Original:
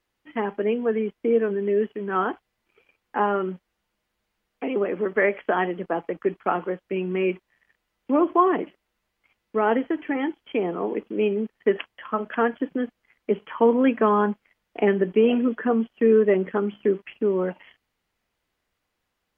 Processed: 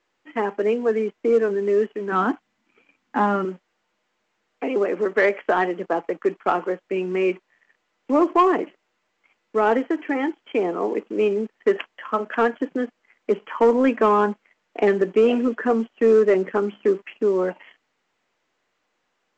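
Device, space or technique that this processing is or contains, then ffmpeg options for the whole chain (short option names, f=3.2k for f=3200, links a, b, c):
telephone: -filter_complex "[0:a]asettb=1/sr,asplit=3[a][b][c];[a]atrim=end=2.124[d];[b]atrim=start=2.12:end=3.45,asetpts=PTS-STARTPTS,afade=t=in:d=0.004:c=qsin,afade=t=out:st=1.326:d=0.004:c=qsin,lowshelf=f=330:t=q:w=3:g=6[e];[c]atrim=start=3.446[f];[d][e]acrossfade=d=0.004:c1=hsin:c2=qsin[g];[g][f]acrossfade=d=0.004:c1=qsin:c2=hsin,highpass=260,lowpass=3k,asoftclip=type=tanh:threshold=-11.5dB,volume=4dB" -ar 16000 -c:a pcm_mulaw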